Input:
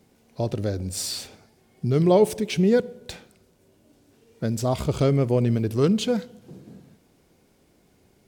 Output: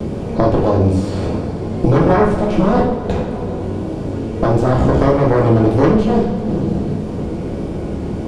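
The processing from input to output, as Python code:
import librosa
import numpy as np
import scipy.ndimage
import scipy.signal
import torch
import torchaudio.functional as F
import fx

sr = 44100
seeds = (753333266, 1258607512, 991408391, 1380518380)

y = fx.bin_compress(x, sr, power=0.6)
y = scipy.signal.sosfilt(scipy.signal.butter(4, 11000.0, 'lowpass', fs=sr, output='sos'), y)
y = fx.tilt_eq(y, sr, slope=-4.0)
y = fx.cheby_harmonics(y, sr, harmonics=(4,), levels_db=(-7,), full_scale_db=0.5)
y = fx.vibrato(y, sr, rate_hz=1.6, depth_cents=53.0)
y = fx.rev_double_slope(y, sr, seeds[0], early_s=0.53, late_s=2.8, knee_db=-19, drr_db=-5.0)
y = fx.band_squash(y, sr, depth_pct=70)
y = y * librosa.db_to_amplitude(-7.5)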